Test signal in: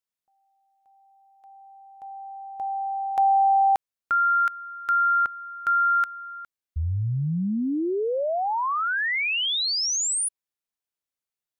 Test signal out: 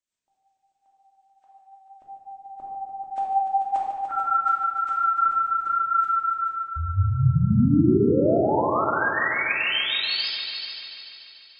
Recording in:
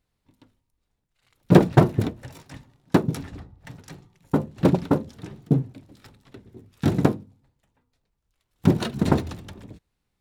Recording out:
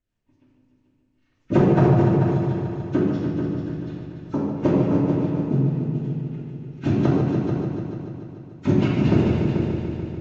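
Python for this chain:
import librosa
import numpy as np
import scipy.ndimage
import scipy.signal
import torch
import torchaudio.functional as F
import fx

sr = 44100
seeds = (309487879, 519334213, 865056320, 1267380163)

y = fx.freq_compress(x, sr, knee_hz=1300.0, ratio=1.5)
y = fx.peak_eq(y, sr, hz=4800.0, db=-4.0, octaves=0.42)
y = fx.rider(y, sr, range_db=4, speed_s=2.0)
y = fx.rotary(y, sr, hz=5.5)
y = fx.hum_notches(y, sr, base_hz=60, count=3)
y = fx.echo_heads(y, sr, ms=146, heads='all three', feedback_pct=51, wet_db=-10.5)
y = fx.room_shoebox(y, sr, seeds[0], volume_m3=1200.0, walls='mixed', distance_m=2.7)
y = y * 10.0 ** (-2.5 / 20.0)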